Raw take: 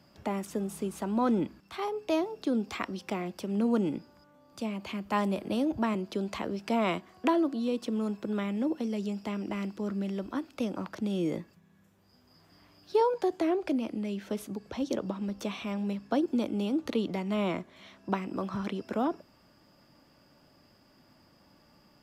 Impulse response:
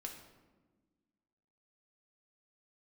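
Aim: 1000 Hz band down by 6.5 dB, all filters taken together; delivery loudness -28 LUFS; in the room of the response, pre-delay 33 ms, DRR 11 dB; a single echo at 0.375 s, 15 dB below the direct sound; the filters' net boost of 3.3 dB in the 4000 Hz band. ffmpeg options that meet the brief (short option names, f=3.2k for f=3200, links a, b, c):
-filter_complex "[0:a]equalizer=f=1k:t=o:g=-8.5,equalizer=f=4k:t=o:g=5,aecho=1:1:375:0.178,asplit=2[a][b];[1:a]atrim=start_sample=2205,adelay=33[c];[b][c]afir=irnorm=-1:irlink=0,volume=-8dB[d];[a][d]amix=inputs=2:normalize=0,volume=4.5dB"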